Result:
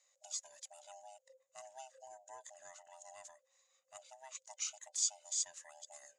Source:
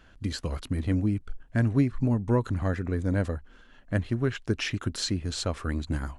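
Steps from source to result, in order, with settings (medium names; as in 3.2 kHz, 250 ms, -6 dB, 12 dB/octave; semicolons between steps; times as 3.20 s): split-band scrambler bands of 500 Hz; band-pass filter 6.9 kHz, Q 9.2; trim +9 dB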